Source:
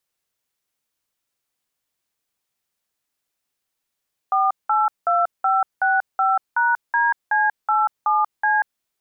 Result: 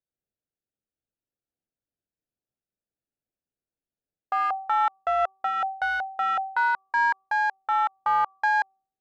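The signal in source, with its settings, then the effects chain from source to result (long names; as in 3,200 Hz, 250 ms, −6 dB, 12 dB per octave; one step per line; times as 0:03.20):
touch tones "482565#DC87C", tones 187 ms, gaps 187 ms, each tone −18 dBFS
adaptive Wiener filter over 41 samples
hum removal 385.3 Hz, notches 3
amplitude modulation by smooth noise, depth 50%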